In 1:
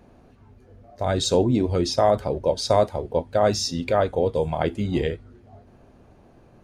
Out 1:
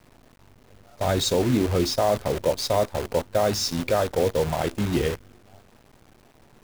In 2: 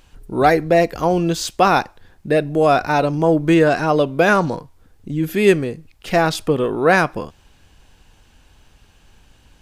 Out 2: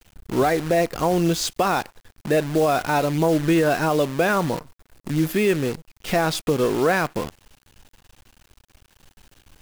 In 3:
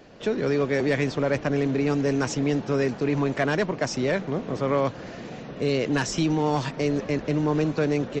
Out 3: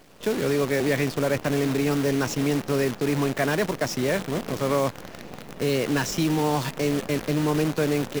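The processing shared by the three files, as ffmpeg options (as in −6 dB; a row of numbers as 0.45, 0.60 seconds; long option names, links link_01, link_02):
-af "alimiter=limit=-11dB:level=0:latency=1:release=172,acrusher=bits=6:dc=4:mix=0:aa=0.000001"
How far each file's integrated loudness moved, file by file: −1.0, −4.5, +0.5 LU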